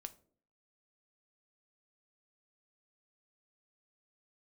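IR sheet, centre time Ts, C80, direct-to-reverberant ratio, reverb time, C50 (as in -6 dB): 4 ms, 22.5 dB, 9.5 dB, 0.50 s, 18.0 dB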